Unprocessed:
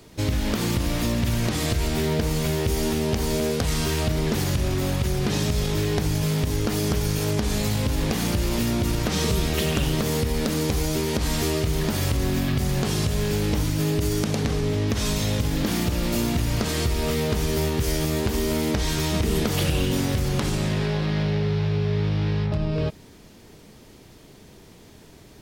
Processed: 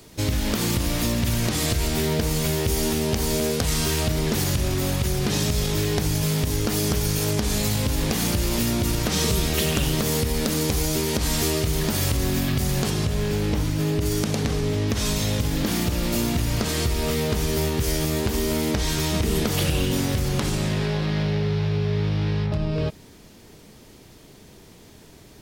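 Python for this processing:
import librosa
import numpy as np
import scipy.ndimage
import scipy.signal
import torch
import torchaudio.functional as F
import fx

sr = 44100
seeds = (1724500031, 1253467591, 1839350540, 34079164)

y = fx.high_shelf(x, sr, hz=4600.0, db=fx.steps((0.0, 6.5), (12.89, -4.0), (14.05, 3.0)))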